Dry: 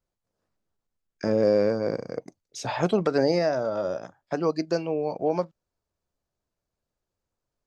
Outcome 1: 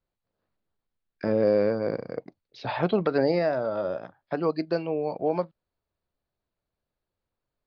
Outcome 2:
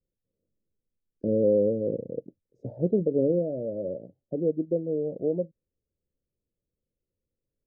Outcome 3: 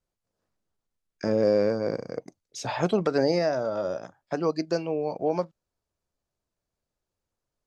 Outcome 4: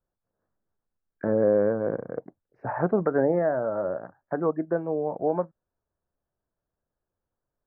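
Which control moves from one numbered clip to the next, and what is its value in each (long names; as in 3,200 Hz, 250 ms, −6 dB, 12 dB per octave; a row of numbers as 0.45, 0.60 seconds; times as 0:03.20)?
elliptic low-pass filter, frequency: 4,400, 530, 12,000, 1,700 Hertz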